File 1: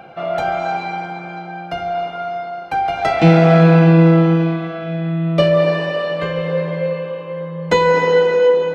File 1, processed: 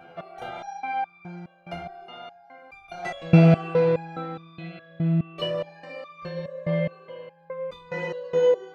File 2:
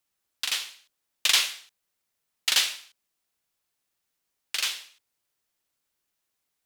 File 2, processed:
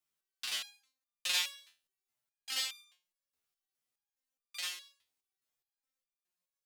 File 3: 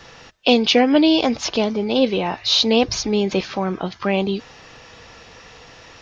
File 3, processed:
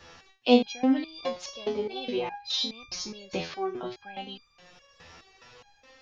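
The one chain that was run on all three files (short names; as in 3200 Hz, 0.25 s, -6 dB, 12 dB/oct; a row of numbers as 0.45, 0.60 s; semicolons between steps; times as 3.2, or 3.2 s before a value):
stepped resonator 4.8 Hz 84–1200 Hz; gain +1.5 dB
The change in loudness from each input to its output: -9.0, -10.5, -11.0 LU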